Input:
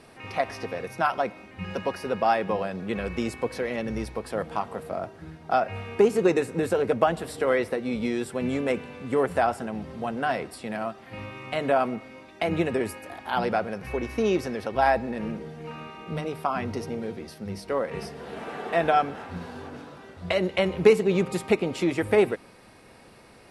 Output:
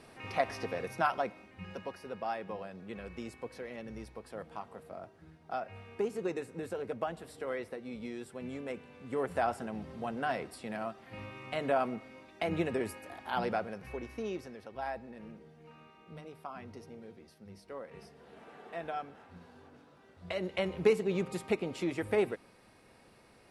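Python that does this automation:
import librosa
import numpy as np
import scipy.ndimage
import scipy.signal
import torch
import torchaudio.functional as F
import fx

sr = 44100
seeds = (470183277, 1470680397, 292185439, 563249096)

y = fx.gain(x, sr, db=fx.line((0.91, -4.0), (1.99, -14.0), (8.81, -14.0), (9.5, -7.0), (13.48, -7.0), (14.61, -17.0), (19.85, -17.0), (20.57, -9.0)))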